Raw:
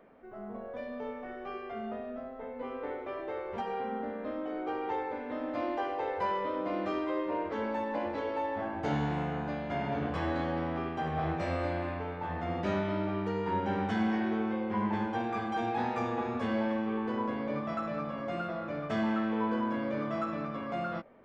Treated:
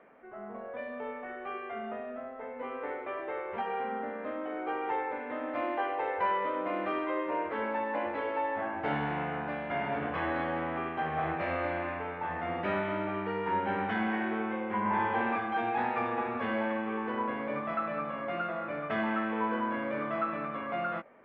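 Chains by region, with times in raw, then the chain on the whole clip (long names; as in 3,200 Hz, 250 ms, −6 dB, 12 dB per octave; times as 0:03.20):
0:14.80–0:15.36: high-frequency loss of the air 100 metres + flutter between parallel walls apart 9.7 metres, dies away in 1.4 s
whole clip: low-pass filter 2,500 Hz 24 dB per octave; spectral tilt +3 dB per octave; level +3 dB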